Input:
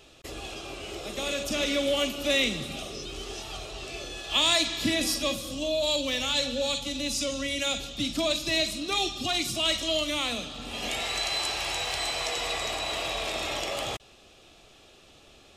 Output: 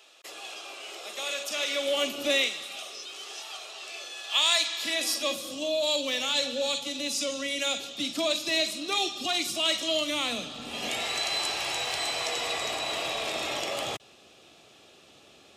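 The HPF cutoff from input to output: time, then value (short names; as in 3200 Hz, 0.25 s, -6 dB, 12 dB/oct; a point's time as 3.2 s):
1.69 s 690 Hz
2.27 s 190 Hz
2.52 s 800 Hz
4.77 s 800 Hz
5.43 s 290 Hz
9.64 s 290 Hz
10.4 s 130 Hz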